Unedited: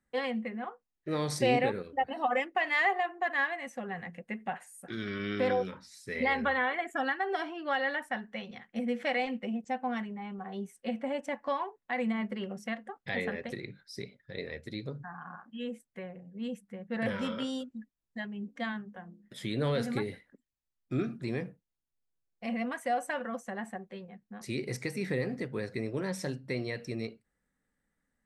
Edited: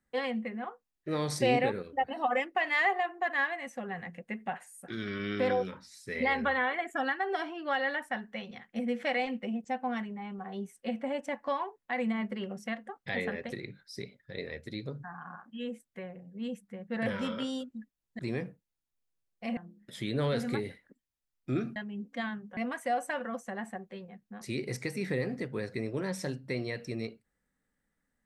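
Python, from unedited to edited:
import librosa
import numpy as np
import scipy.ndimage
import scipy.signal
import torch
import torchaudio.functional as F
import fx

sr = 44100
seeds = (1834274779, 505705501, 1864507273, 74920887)

y = fx.edit(x, sr, fx.swap(start_s=18.19, length_s=0.81, other_s=21.19, other_length_s=1.38), tone=tone)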